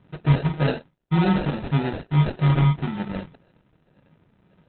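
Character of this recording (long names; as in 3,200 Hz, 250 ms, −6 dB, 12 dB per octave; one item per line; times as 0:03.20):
a quantiser's noise floor 12 bits, dither none
phaser sweep stages 2, 1.8 Hz, lowest notch 410–1,400 Hz
aliases and images of a low sample rate 1,100 Hz, jitter 0%
Opus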